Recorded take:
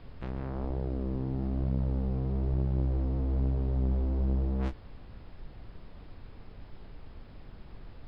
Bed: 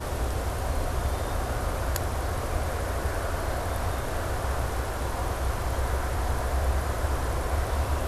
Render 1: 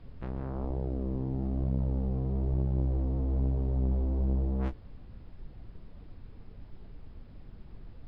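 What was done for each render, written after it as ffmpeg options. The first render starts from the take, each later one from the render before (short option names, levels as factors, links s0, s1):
-af "afftdn=nr=7:nf=-49"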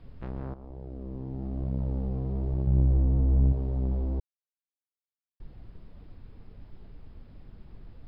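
-filter_complex "[0:a]asettb=1/sr,asplit=3[s0][s1][s2];[s0]atrim=end=2.674[s3];[s1]atrim=start=2.67:end=3.53,asetpts=PTS-STARTPTS,afade=t=in:d=0.004:c=qsin,afade=t=out:st=0.856:d=0.004:c=qsin,bass=f=250:g=7,treble=f=4000:g=-8[s4];[s2]atrim=start=3.526[s5];[s3][s4]acrossfade=d=0.004:c1=hsin:c2=qsin[s6];[s6][s5]acrossfade=d=0.004:c1=qsin:c2=hsin,asplit=4[s7][s8][s9][s10];[s7]atrim=end=0.54,asetpts=PTS-STARTPTS,afade=t=out:st=0.536:d=0.004:c=hsin:silence=0.211349[s11];[s8]atrim=start=0.54:end=4.2,asetpts=PTS-STARTPTS,afade=t=in:d=1.35:silence=0.211349,afade=t=out:st=3.656:d=0.004:c=hsin[s12];[s9]atrim=start=4.2:end=5.4,asetpts=PTS-STARTPTS,volume=0[s13];[s10]atrim=start=5.4,asetpts=PTS-STARTPTS,afade=t=in:d=0.004:c=hsin[s14];[s11][s12][s13][s14]concat=n=4:v=0:a=1"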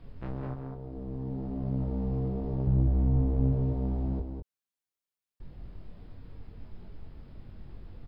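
-filter_complex "[0:a]asplit=2[s0][s1];[s1]adelay=22,volume=0.501[s2];[s0][s2]amix=inputs=2:normalize=0,asplit=2[s3][s4];[s4]aecho=0:1:203:0.531[s5];[s3][s5]amix=inputs=2:normalize=0"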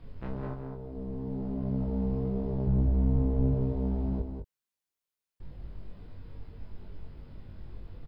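-filter_complex "[0:a]asplit=2[s0][s1];[s1]adelay=20,volume=0.501[s2];[s0][s2]amix=inputs=2:normalize=0"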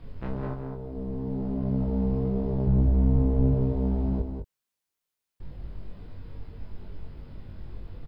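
-af "volume=1.58"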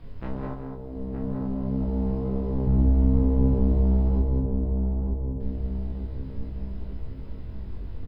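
-filter_complex "[0:a]asplit=2[s0][s1];[s1]adelay=19,volume=0.299[s2];[s0][s2]amix=inputs=2:normalize=0,asplit=2[s3][s4];[s4]adelay=918,lowpass=f=1100:p=1,volume=0.668,asplit=2[s5][s6];[s6]adelay=918,lowpass=f=1100:p=1,volume=0.54,asplit=2[s7][s8];[s8]adelay=918,lowpass=f=1100:p=1,volume=0.54,asplit=2[s9][s10];[s10]adelay=918,lowpass=f=1100:p=1,volume=0.54,asplit=2[s11][s12];[s12]adelay=918,lowpass=f=1100:p=1,volume=0.54,asplit=2[s13][s14];[s14]adelay=918,lowpass=f=1100:p=1,volume=0.54,asplit=2[s15][s16];[s16]adelay=918,lowpass=f=1100:p=1,volume=0.54[s17];[s3][s5][s7][s9][s11][s13][s15][s17]amix=inputs=8:normalize=0"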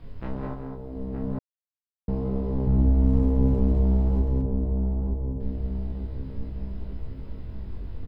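-filter_complex "[0:a]asettb=1/sr,asplit=3[s0][s1][s2];[s0]atrim=end=3.044[s3];[s1]atrim=start=3.04:end=4.42,asetpts=PTS-STARTPTS,afade=t=in:d=0.004:c=qsin,afade=t=out:st=1.376:d=0.004:c=qsin,aeval=exprs='sgn(val(0))*max(abs(val(0))-0.00266,0)':c=same[s4];[s2]atrim=start=4.416[s5];[s3][s4]acrossfade=d=0.004:c1=hsin:c2=qsin[s6];[s6][s5]acrossfade=d=0.004:c1=qsin:c2=hsin,asplit=3[s7][s8][s9];[s7]atrim=end=1.39,asetpts=PTS-STARTPTS,afade=t=out:st=1.386:d=0.004:c=hsin[s10];[s8]atrim=start=1.39:end=2.08,asetpts=PTS-STARTPTS,volume=0[s11];[s9]atrim=start=2.08,asetpts=PTS-STARTPTS,afade=t=in:d=0.004:c=hsin[s12];[s10][s11][s12]concat=n=3:v=0:a=1"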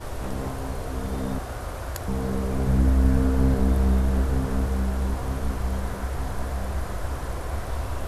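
-filter_complex "[1:a]volume=0.631[s0];[0:a][s0]amix=inputs=2:normalize=0"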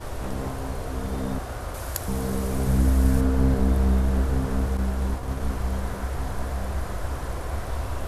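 -filter_complex "[0:a]asettb=1/sr,asplit=3[s0][s1][s2];[s0]atrim=end=1.744[s3];[s1]atrim=start=1.74:end=3.21,asetpts=PTS-STARTPTS,afade=t=in:d=0.004:c=qsin,afade=t=out:st=1.466:d=0.004:c=qsin,aemphasis=mode=production:type=cd[s4];[s2]atrim=start=3.206[s5];[s3][s4]acrossfade=d=0.004:c1=hsin:c2=qsin[s6];[s6][s5]acrossfade=d=0.004:c1=qsin:c2=hsin,asettb=1/sr,asplit=3[s7][s8][s9];[s7]atrim=end=4.774[s10];[s8]atrim=start=4.77:end=5.4,asetpts=PTS-STARTPTS,afade=t=in:d=0.004:c=qsin,afade=t=out:st=0.626:d=0.004:c=qsin,agate=range=0.0224:threshold=0.0501:ratio=3:release=100:detection=peak[s11];[s9]atrim=start=5.396[s12];[s10][s11]acrossfade=d=0.004:c1=hsin:c2=qsin[s13];[s13][s12]acrossfade=d=0.004:c1=qsin:c2=hsin"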